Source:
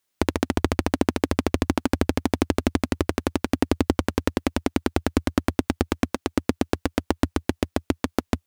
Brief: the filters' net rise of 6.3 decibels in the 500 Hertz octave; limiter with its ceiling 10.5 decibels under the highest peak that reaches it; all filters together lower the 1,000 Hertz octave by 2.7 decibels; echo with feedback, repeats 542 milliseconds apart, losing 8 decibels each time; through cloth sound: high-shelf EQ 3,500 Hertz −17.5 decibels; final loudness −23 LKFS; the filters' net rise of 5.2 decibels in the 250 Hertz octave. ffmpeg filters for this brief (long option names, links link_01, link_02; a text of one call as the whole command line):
ffmpeg -i in.wav -af "equalizer=frequency=250:width_type=o:gain=4,equalizer=frequency=500:width_type=o:gain=8.5,equalizer=frequency=1000:width_type=o:gain=-6,alimiter=limit=-10.5dB:level=0:latency=1,highshelf=frequency=3500:gain=-17.5,aecho=1:1:542|1084|1626|2168|2710:0.398|0.159|0.0637|0.0255|0.0102,volume=5dB" out.wav